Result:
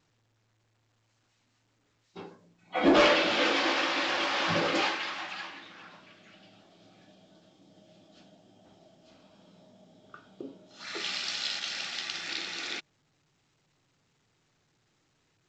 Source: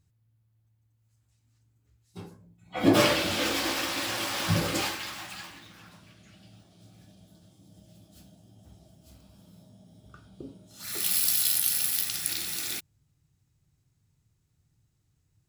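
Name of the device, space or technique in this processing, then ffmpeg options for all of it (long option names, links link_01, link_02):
telephone: -af "highpass=320,lowpass=3500,asoftclip=type=tanh:threshold=-18dB,volume=4.5dB" -ar 16000 -c:a pcm_alaw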